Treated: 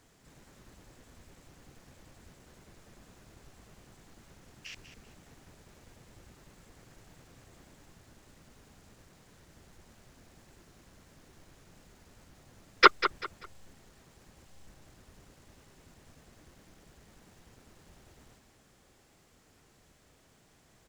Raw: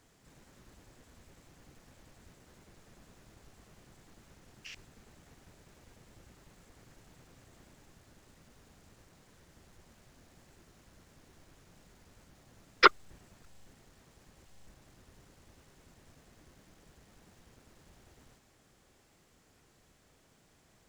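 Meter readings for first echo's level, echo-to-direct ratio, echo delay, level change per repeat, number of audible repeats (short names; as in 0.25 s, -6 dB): -11.0 dB, -10.5 dB, 0.195 s, -11.0 dB, 3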